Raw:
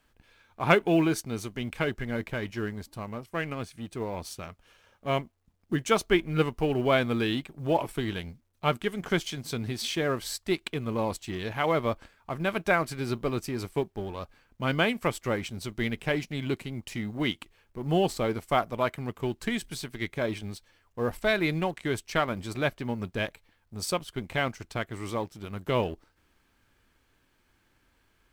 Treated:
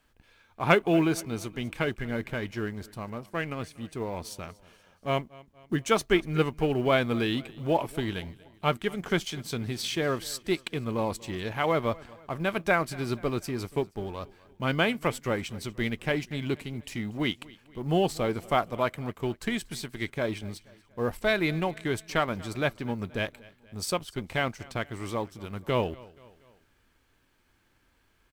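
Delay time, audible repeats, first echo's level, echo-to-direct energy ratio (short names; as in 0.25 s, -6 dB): 0.238 s, 3, -22.0 dB, -21.0 dB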